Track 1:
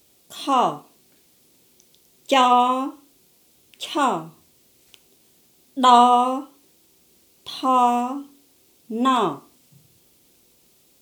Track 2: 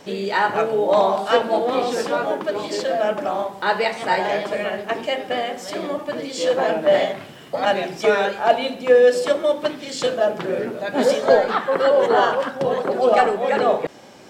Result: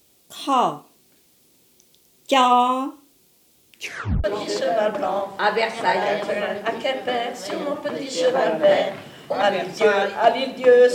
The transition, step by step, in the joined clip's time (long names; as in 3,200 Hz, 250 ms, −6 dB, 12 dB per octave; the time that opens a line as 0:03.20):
track 1
0:03.73: tape stop 0.51 s
0:04.24: continue with track 2 from 0:02.47